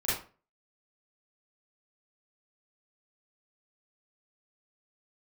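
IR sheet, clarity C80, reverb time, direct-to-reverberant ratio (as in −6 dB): 8.5 dB, 0.35 s, −11.0 dB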